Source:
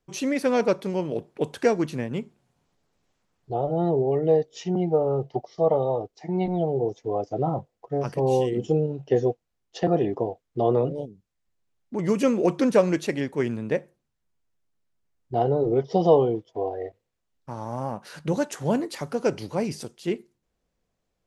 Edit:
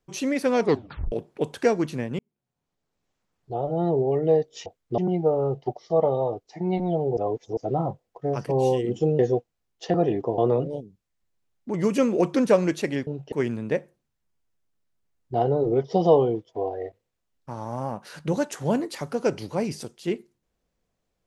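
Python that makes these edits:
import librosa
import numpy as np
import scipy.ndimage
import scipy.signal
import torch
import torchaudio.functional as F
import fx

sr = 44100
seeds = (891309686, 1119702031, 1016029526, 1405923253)

y = fx.edit(x, sr, fx.tape_stop(start_s=0.61, length_s=0.51),
    fx.fade_in_span(start_s=2.19, length_s=1.74),
    fx.reverse_span(start_s=6.85, length_s=0.4),
    fx.move(start_s=8.87, length_s=0.25, to_s=13.32),
    fx.move(start_s=10.31, length_s=0.32, to_s=4.66), tone=tone)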